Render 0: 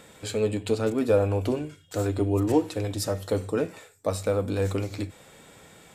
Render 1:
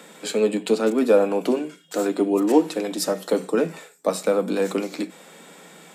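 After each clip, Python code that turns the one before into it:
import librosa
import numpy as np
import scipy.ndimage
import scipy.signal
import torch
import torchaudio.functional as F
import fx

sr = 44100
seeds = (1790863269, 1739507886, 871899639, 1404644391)

y = scipy.signal.sosfilt(scipy.signal.cheby1(10, 1.0, 160.0, 'highpass', fs=sr, output='sos'), x)
y = y * librosa.db_to_amplitude(6.0)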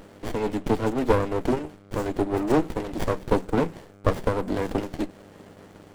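y = fx.dmg_buzz(x, sr, base_hz=100.0, harmonics=12, level_db=-47.0, tilt_db=-1, odd_only=False)
y = fx.hpss(y, sr, part='harmonic', gain_db=-9)
y = fx.running_max(y, sr, window=33)
y = y * librosa.db_to_amplitude(2.5)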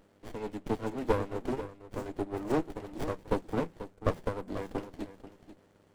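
y = x + 10.0 ** (-8.5 / 20.0) * np.pad(x, (int(488 * sr / 1000.0), 0))[:len(x)]
y = fx.upward_expand(y, sr, threshold_db=-34.0, expansion=1.5)
y = y * librosa.db_to_amplitude(-6.5)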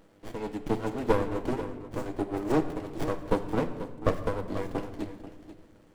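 y = fx.room_shoebox(x, sr, seeds[0], volume_m3=1100.0, walls='mixed', distance_m=0.64)
y = y * librosa.db_to_amplitude(3.0)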